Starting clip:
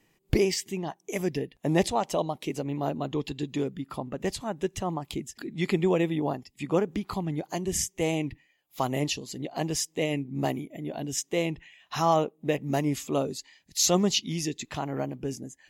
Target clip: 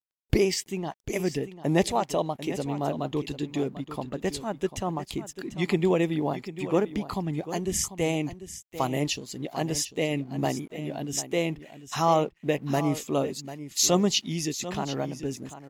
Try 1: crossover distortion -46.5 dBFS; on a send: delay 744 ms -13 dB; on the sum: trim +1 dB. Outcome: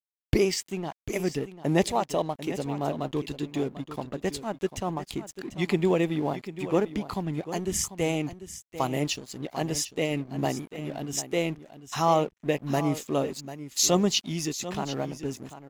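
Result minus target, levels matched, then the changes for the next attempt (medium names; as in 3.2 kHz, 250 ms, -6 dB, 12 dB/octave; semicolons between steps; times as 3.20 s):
crossover distortion: distortion +10 dB
change: crossover distortion -57.5 dBFS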